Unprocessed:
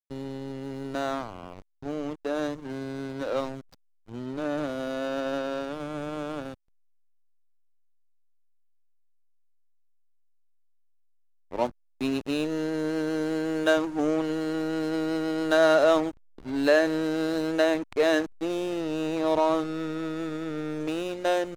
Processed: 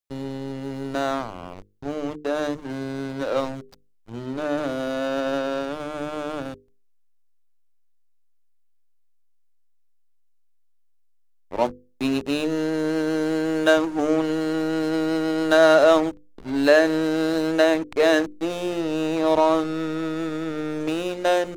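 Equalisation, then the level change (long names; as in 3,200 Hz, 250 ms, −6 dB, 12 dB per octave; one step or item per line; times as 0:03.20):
mains-hum notches 50/100/150/200/250/300/350/400/450/500 Hz
+5.0 dB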